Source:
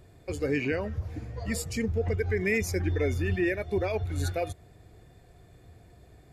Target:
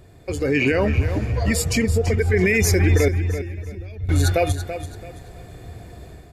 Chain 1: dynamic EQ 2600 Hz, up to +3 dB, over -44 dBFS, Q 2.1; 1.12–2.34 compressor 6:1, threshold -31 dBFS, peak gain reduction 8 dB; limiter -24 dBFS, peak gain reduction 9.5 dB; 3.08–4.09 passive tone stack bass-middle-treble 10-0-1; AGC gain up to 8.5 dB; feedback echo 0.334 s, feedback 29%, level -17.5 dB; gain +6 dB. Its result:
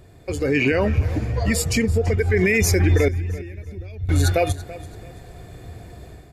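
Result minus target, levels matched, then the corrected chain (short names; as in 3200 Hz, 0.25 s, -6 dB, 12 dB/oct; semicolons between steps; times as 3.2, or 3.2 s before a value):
echo-to-direct -7 dB
dynamic EQ 2600 Hz, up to +3 dB, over -44 dBFS, Q 2.1; 1.12–2.34 compressor 6:1, threshold -31 dBFS, peak gain reduction 8 dB; limiter -24 dBFS, peak gain reduction 9.5 dB; 3.08–4.09 passive tone stack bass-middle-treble 10-0-1; AGC gain up to 8.5 dB; feedback echo 0.334 s, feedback 29%, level -10.5 dB; gain +6 dB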